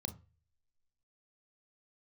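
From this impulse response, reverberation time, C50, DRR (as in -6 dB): 0.35 s, 16.0 dB, 9.0 dB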